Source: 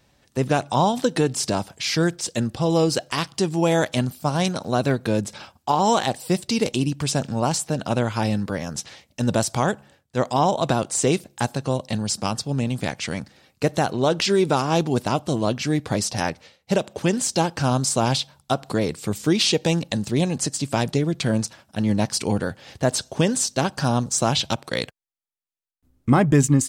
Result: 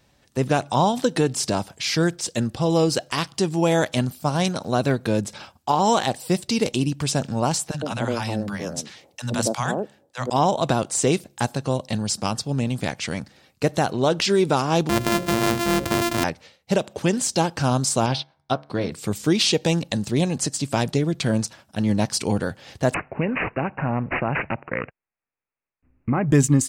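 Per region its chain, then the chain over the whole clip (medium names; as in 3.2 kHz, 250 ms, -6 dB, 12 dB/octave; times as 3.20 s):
7.71–10.30 s: high-pass 110 Hz + three bands offset in time highs, lows, mids 30/110 ms, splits 200/760 Hz
14.89–16.24 s: sorted samples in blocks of 128 samples + hum notches 60/120/180/240/300/360/420/480/540/600 Hz + level flattener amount 50%
18.06–18.92 s: Savitzky-Golay filter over 15 samples + de-hum 72.37 Hz, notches 32 + upward expansion, over -41 dBFS
22.94–26.29 s: compression 2:1, threshold -21 dBFS + careless resampling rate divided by 8×, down none, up filtered
whole clip: none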